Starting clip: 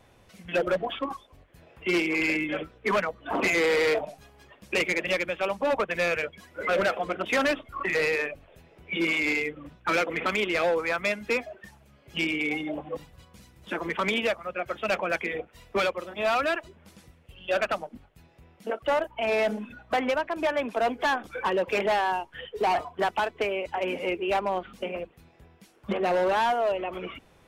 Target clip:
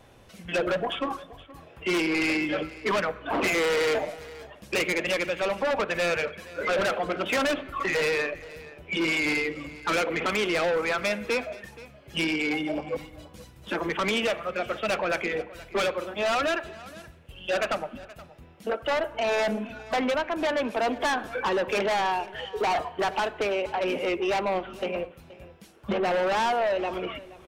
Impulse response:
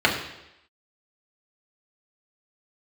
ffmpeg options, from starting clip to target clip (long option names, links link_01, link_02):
-filter_complex "[0:a]asplit=2[link_01][link_02];[1:a]atrim=start_sample=2205,asetrate=40131,aresample=44100[link_03];[link_02][link_03]afir=irnorm=-1:irlink=0,volume=-32.5dB[link_04];[link_01][link_04]amix=inputs=2:normalize=0,aeval=exprs='0.168*sin(PI/2*2*val(0)/0.168)':channel_layout=same,asplit=2[link_05][link_06];[link_06]aecho=0:1:475:0.112[link_07];[link_05][link_07]amix=inputs=2:normalize=0,volume=-6.5dB"